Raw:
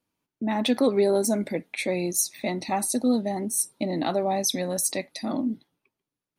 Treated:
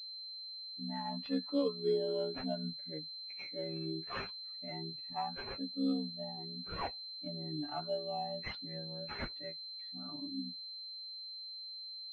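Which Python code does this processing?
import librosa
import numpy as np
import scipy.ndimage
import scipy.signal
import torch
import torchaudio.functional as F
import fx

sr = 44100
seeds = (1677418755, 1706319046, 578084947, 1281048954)

y = fx.bin_expand(x, sr, power=2.0)
y = fx.stretch_grains(y, sr, factor=1.9, grain_ms=29.0)
y = fx.pwm(y, sr, carrier_hz=4100.0)
y = y * 10.0 ** (-8.5 / 20.0)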